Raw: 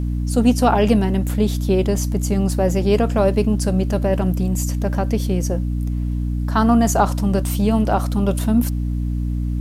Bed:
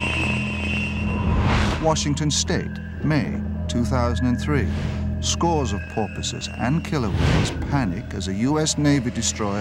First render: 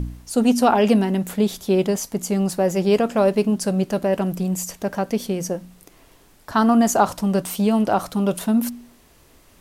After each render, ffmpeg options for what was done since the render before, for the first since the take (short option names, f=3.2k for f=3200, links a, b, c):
-af "bandreject=f=60:t=h:w=4,bandreject=f=120:t=h:w=4,bandreject=f=180:t=h:w=4,bandreject=f=240:t=h:w=4,bandreject=f=300:t=h:w=4"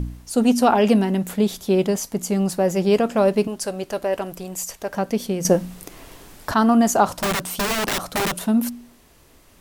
-filter_complex "[0:a]asettb=1/sr,asplit=3[a][b][c];[a]atrim=end=3.474[d];[b]atrim=start=3.47:end=4.94,asetpts=PTS-STARTPTS,afade=t=in:d=0.004:c=qsin,afade=t=out:st=1.466:d=0.004:c=qsin,equalizer=f=190:t=o:w=1.2:g=-13[e];[c]atrim=start=4.936[f];[d][e]acrossfade=d=0.004:c1=hsin:c2=qsin[g];[g][f]acrossfade=d=0.004:c1=qsin:c2=hsin,asettb=1/sr,asplit=3[h][i][j];[h]atrim=end=7.134[k];[i]atrim=start=7.13:end=8.35,asetpts=PTS-STARTPTS,afade=t=in:d=0.004:c=qsin,afade=t=out:st=1.216:d=0.004:c=qsin,aeval=exprs='(mod(7.94*val(0)+1,2)-1)/7.94':c=same[l];[j]atrim=start=8.346[m];[k][l]acrossfade=d=0.004:c1=hsin:c2=qsin[n];[n][m]acrossfade=d=0.004:c1=qsin:c2=hsin,asplit=3[o][p][q];[o]atrim=end=5.452[r];[p]atrim=start=5.448:end=6.542,asetpts=PTS-STARTPTS,volume=9.5dB[s];[q]atrim=start=6.538[t];[r][s]acrossfade=d=0.004:c1=hsin:c2=hsin[u];[u][t]acrossfade=d=0.004:c1=hsin:c2=hsin"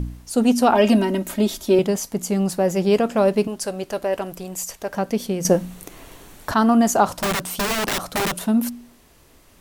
-filter_complex "[0:a]asettb=1/sr,asplit=3[a][b][c];[a]atrim=end=0.744[d];[b]atrim=start=0.74:end=1.79,asetpts=PTS-STARTPTS,afade=t=in:d=0.004:c=qsin,afade=t=out:st=1.046:d=0.004:c=qsin,aecho=1:1:3.2:0.88,atrim=end_sample=46305[e];[c]atrim=start=1.786[f];[d][e]acrossfade=d=0.004:c1=hsin:c2=qsin[g];[g][f]acrossfade=d=0.004:c1=qsin:c2=hsin,asettb=1/sr,asplit=3[h][i][j];[h]atrim=end=5.584[k];[i]atrim=start=5.58:end=6.51,asetpts=PTS-STARTPTS,afade=t=in:d=0.004:c=qsin,afade=t=out:st=0.926:d=0.004:c=qsin,bandreject=f=5k:w=9.3[l];[j]atrim=start=6.506[m];[k][l]acrossfade=d=0.004:c1=hsin:c2=qsin[n];[n][m]acrossfade=d=0.004:c1=qsin:c2=hsin"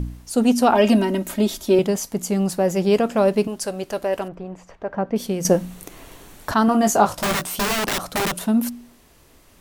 -filter_complex "[0:a]asettb=1/sr,asplit=3[a][b][c];[a]atrim=end=4.284[d];[b]atrim=start=4.28:end=5.16,asetpts=PTS-STARTPTS,afade=t=in:d=0.004:c=qsin,afade=t=out:st=0.876:d=0.004:c=qsin,lowpass=1.6k[e];[c]atrim=start=5.156[f];[d][e]acrossfade=d=0.004:c1=hsin:c2=qsin[g];[g][f]acrossfade=d=0.004:c1=qsin:c2=hsin,asettb=1/sr,asplit=3[h][i][j];[h]atrim=end=6.664[k];[i]atrim=start=6.66:end=7.8,asetpts=PTS-STARTPTS,afade=t=in:d=0.004:c=qsin,afade=t=out:st=1.136:d=0.004:c=qsin,asplit=2[l][m];[m]adelay=19,volume=-6dB[n];[l][n]amix=inputs=2:normalize=0,atrim=end_sample=50274[o];[j]atrim=start=7.796[p];[k][o]acrossfade=d=0.004:c1=hsin:c2=qsin[q];[q][p]acrossfade=d=0.004:c1=qsin:c2=hsin"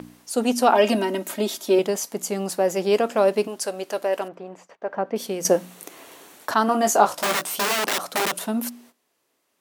-af "agate=range=-16dB:threshold=-44dB:ratio=16:detection=peak,highpass=330"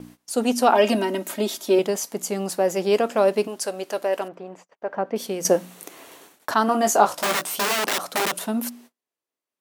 -af "agate=range=-19dB:threshold=-46dB:ratio=16:detection=peak"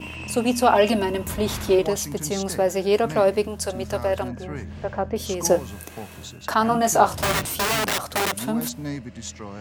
-filter_complex "[1:a]volume=-12.5dB[a];[0:a][a]amix=inputs=2:normalize=0"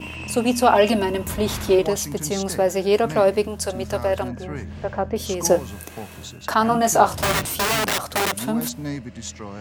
-af "volume=1.5dB,alimiter=limit=-2dB:level=0:latency=1"